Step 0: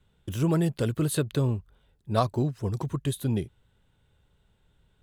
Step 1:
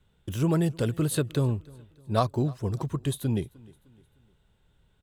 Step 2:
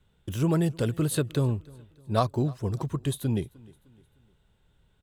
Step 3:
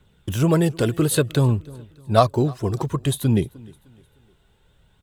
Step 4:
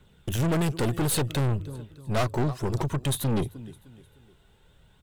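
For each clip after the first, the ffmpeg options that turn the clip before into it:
ffmpeg -i in.wav -af "aecho=1:1:305|610|915:0.0631|0.0271|0.0117" out.wav
ffmpeg -i in.wav -af anull out.wav
ffmpeg -i in.wav -af "lowshelf=frequency=92:gain=-6,aphaser=in_gain=1:out_gain=1:delay=3:decay=0.31:speed=0.57:type=triangular,volume=8dB" out.wav
ffmpeg -i in.wav -af "aeval=exprs='(tanh(17.8*val(0)+0.45)-tanh(0.45))/17.8':channel_layout=same,bandreject=frequency=50:width_type=h:width=6,bandreject=frequency=100:width_type=h:width=6,volume=2.5dB" out.wav

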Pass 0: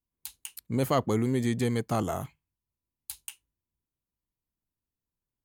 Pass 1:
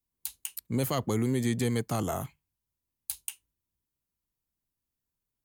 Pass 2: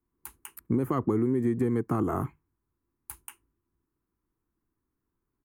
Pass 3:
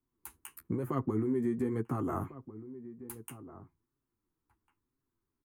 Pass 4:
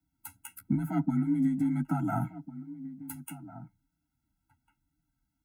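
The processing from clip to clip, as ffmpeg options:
ffmpeg -i in.wav -filter_complex "[0:a]highshelf=frequency=6800:gain=6,acrossover=split=160|2200[link_01][link_02][link_03];[link_02]alimiter=limit=-22dB:level=0:latency=1:release=90[link_04];[link_01][link_04][link_03]amix=inputs=3:normalize=0" out.wav
ffmpeg -i in.wav -af "firequalizer=gain_entry='entry(180,0);entry(340,10);entry(580,-7);entry(1100,4);entry(3700,-26);entry(9800,-15)':delay=0.05:min_phase=1,acompressor=threshold=-31dB:ratio=6,volume=8dB" out.wav
ffmpeg -i in.wav -filter_complex "[0:a]alimiter=limit=-18.5dB:level=0:latency=1:release=324,flanger=delay=7.4:depth=6.2:regen=25:speed=1:shape=sinusoidal,asplit=2[link_01][link_02];[link_02]adelay=1399,volume=-15dB,highshelf=frequency=4000:gain=-31.5[link_03];[link_01][link_03]amix=inputs=2:normalize=0" out.wav
ffmpeg -i in.wav -af "afreqshift=30,aphaser=in_gain=1:out_gain=1:delay=4.8:decay=0.22:speed=1.4:type=triangular,afftfilt=real='re*eq(mod(floor(b*sr/1024/320),2),0)':imag='im*eq(mod(floor(b*sr/1024/320),2),0)':win_size=1024:overlap=0.75,volume=6dB" out.wav

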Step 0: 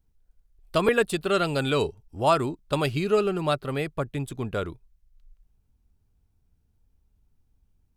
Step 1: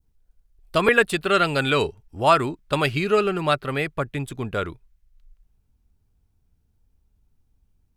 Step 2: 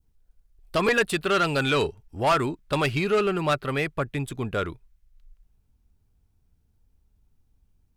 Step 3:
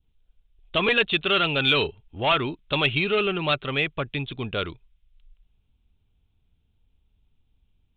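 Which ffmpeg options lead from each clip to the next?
ffmpeg -i in.wav -af "adynamicequalizer=threshold=0.01:dfrequency=1900:dqfactor=0.89:tfrequency=1900:tqfactor=0.89:attack=5:release=100:ratio=0.375:range=4:mode=boostabove:tftype=bell,volume=1.5dB" out.wav
ffmpeg -i in.wav -af "asoftclip=type=tanh:threshold=-15.5dB" out.wav
ffmpeg -i in.wav -af "aresample=8000,aresample=44100,aexciter=amount=4.6:drive=4.2:freq=2500,volume=-1.5dB" out.wav

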